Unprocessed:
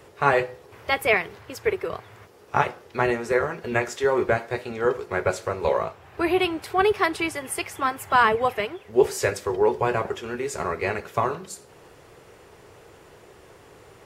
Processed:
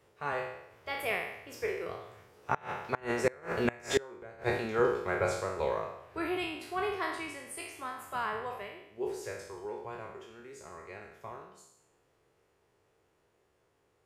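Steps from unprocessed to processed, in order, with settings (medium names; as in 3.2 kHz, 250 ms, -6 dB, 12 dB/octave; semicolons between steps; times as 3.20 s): spectral sustain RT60 0.81 s; Doppler pass-by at 3.89 s, 7 m/s, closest 3.6 m; inverted gate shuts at -14 dBFS, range -27 dB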